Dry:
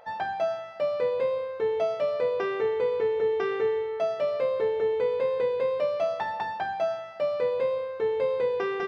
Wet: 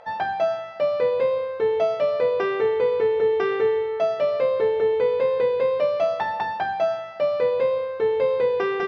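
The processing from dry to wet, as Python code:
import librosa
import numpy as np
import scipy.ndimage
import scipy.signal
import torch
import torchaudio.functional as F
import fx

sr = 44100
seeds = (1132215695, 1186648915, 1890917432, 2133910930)

y = scipy.signal.sosfilt(scipy.signal.butter(2, 6300.0, 'lowpass', fs=sr, output='sos'), x)
y = F.gain(torch.from_numpy(y), 5.0).numpy()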